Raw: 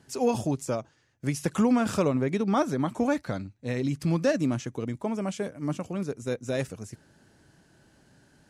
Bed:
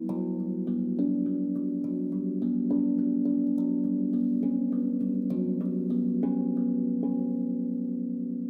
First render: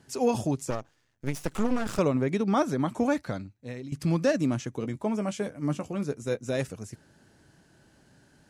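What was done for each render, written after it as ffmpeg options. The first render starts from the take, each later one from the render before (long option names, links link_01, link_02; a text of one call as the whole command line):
ffmpeg -i in.wav -filter_complex "[0:a]asettb=1/sr,asplit=3[link_01][link_02][link_03];[link_01]atrim=end=0.704[link_04];[link_02]atrim=start=0.7:end=1.99,asetpts=PTS-STARTPTS,afade=type=in:duration=0.004:curve=qsin,afade=type=out:start_time=1.286:duration=0.004:curve=qsin,aeval=exprs='max(val(0),0)':channel_layout=same[link_05];[link_03]atrim=start=1.986[link_06];[link_04][link_05]acrossfade=duration=0.004:curve1=hsin:curve2=qsin[link_07];[link_07][link_06]acrossfade=duration=0.004:curve1=qsin:curve2=hsin,asettb=1/sr,asplit=3[link_08][link_09][link_10];[link_08]atrim=end=4.794[link_11];[link_09]atrim=start=4.79:end=6.47,asetpts=PTS-STARTPTS,afade=type=in:duration=0.004:curve=qsin,afade=type=out:start_time=1.676:duration=0.004:curve=qsin,asplit=2[link_12][link_13];[link_13]adelay=14,volume=-9.5dB[link_14];[link_12][link_14]amix=inputs=2:normalize=0,atrim=end_sample=74088[link_15];[link_10]atrim=start=6.466[link_16];[link_11][link_15]acrossfade=duration=0.004:curve1=hsin:curve2=qsin[link_17];[link_17][link_16]acrossfade=duration=0.004:curve1=qsin:curve2=hsin,asplit=2[link_18][link_19];[link_18]atrim=end=3.92,asetpts=PTS-STARTPTS,afade=type=out:start_time=3.2:duration=0.72:silence=0.177828[link_20];[link_19]atrim=start=3.92,asetpts=PTS-STARTPTS,afade=type=in:duration=0.004:curve=hsin:silence=0.177828[link_21];[link_20][link_21]concat=n=2:v=0:a=1" out.wav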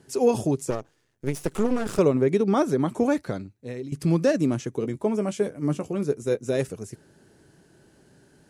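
ffmpeg -i in.wav -af "equalizer=frequency=160:width_type=o:width=0.67:gain=3,equalizer=frequency=400:width_type=o:width=0.67:gain=9,equalizer=frequency=10000:width_type=o:width=0.67:gain=5" out.wav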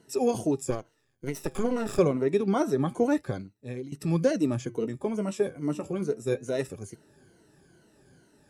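ffmpeg -i in.wav -af "afftfilt=real='re*pow(10,12/40*sin(2*PI*(1.9*log(max(b,1)*sr/1024/100)/log(2)-(-2.3)*(pts-256)/sr)))':imag='im*pow(10,12/40*sin(2*PI*(1.9*log(max(b,1)*sr/1024/100)/log(2)-(-2.3)*(pts-256)/sr)))':win_size=1024:overlap=0.75,flanger=delay=0.7:depth=7.6:regen=-89:speed=0.26:shape=triangular" out.wav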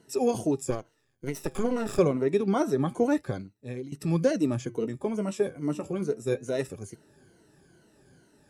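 ffmpeg -i in.wav -af anull out.wav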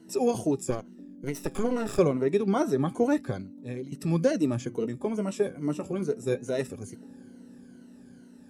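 ffmpeg -i in.wav -i bed.wav -filter_complex "[1:a]volume=-20dB[link_01];[0:a][link_01]amix=inputs=2:normalize=0" out.wav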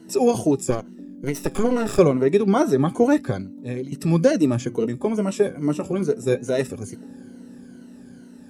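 ffmpeg -i in.wav -af "volume=7dB" out.wav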